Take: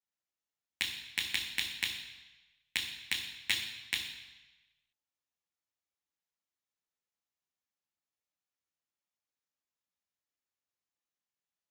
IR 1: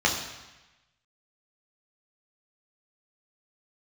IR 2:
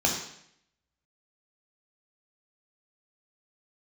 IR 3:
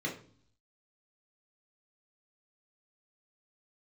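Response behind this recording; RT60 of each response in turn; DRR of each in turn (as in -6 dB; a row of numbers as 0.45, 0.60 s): 1; 1.1, 0.70, 0.50 s; -2.0, 0.5, -2.0 dB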